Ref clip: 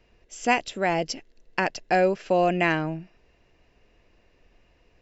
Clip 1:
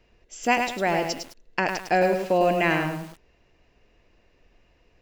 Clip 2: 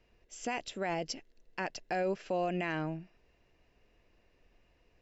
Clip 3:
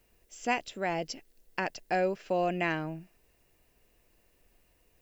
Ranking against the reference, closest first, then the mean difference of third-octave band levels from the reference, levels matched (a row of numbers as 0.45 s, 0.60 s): 3, 2, 1; 1.0 dB, 2.0 dB, 7.0 dB